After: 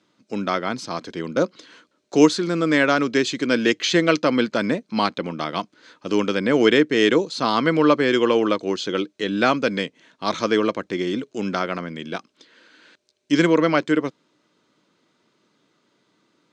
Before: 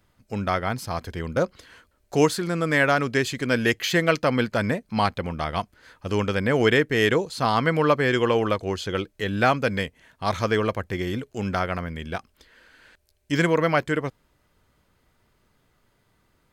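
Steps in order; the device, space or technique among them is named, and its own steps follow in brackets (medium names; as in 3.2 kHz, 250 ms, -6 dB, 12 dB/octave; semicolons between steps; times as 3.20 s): television speaker (cabinet simulation 170–7300 Hz, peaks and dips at 310 Hz +7 dB, 770 Hz -5 dB, 1.8 kHz -4 dB, 3.8 kHz +5 dB, 6 kHz +3 dB); trim +2.5 dB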